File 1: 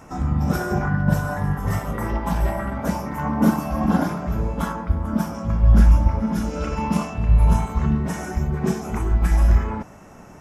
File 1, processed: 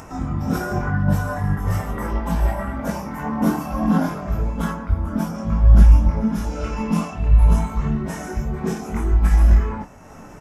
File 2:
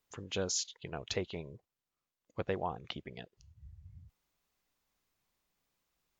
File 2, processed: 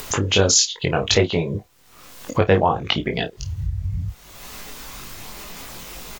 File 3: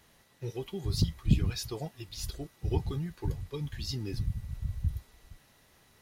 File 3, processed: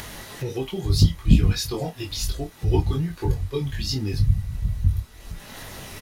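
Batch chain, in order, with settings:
chorus voices 4, 0.67 Hz, delay 21 ms, depth 2.5 ms; doubling 30 ms -13 dB; upward compressor, threshold -36 dBFS; peak normalisation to -2 dBFS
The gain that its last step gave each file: +2.5 dB, +22.0 dB, +12.0 dB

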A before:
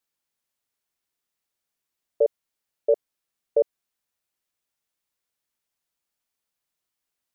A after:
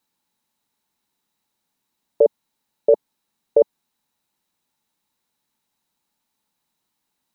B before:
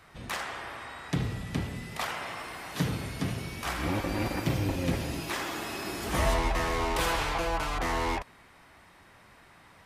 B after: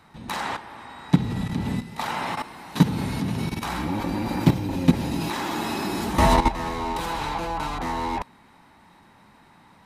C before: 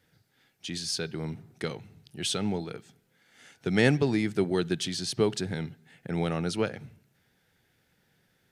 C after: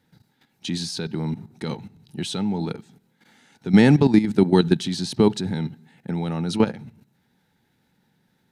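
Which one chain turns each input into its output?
level held to a coarse grid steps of 13 dB; small resonant body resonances 210/870/3900 Hz, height 11 dB, ringing for 20 ms; peak normalisation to -3 dBFS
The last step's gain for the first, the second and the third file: +12.5 dB, +6.5 dB, +6.5 dB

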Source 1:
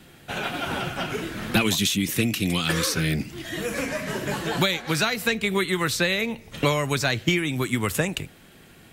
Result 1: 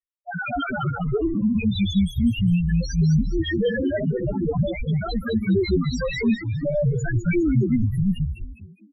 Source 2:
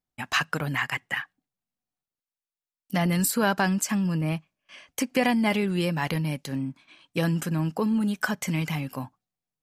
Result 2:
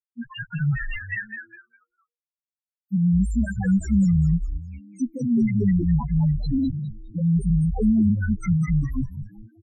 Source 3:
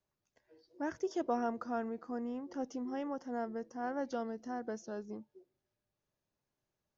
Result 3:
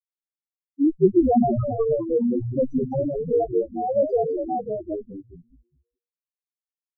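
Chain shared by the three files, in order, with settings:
compression 6:1, threshold -26 dBFS; treble shelf 5.3 kHz +12 dB; fuzz box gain 45 dB, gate -36 dBFS; loudest bins only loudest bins 1; distance through air 110 m; on a send: frequency-shifting echo 204 ms, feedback 33%, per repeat -120 Hz, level -7 dB; on the sum: Shepard-style phaser rising 0.46 Hz; normalise loudness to -23 LUFS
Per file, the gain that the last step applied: +6.0 dB, +2.0 dB, +10.5 dB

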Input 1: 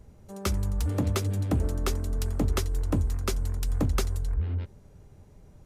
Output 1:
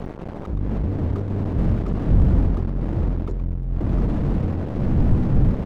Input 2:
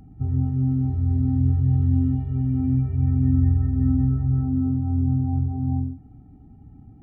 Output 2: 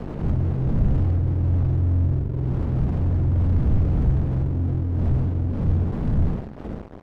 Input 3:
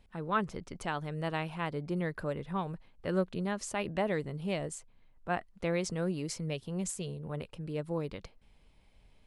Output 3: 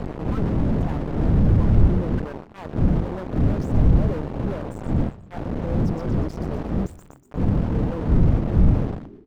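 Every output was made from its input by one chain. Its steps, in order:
resonances exaggerated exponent 3; wind noise 200 Hz -22 dBFS; low-pass 7.1 kHz 12 dB/octave; band-stop 380 Hz, Q 12; in parallel at +0.5 dB: compression 16:1, threshold -26 dBFS; on the sum: transient shaper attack -10 dB, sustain +7 dB; crossover distortion -25.5 dBFS; frequency-shifting echo 121 ms, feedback 54%, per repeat -110 Hz, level -22 dB; slew-rate limiter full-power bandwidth 12 Hz; normalise loudness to -23 LUFS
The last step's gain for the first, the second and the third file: +5.5 dB, +1.5 dB, +6.5 dB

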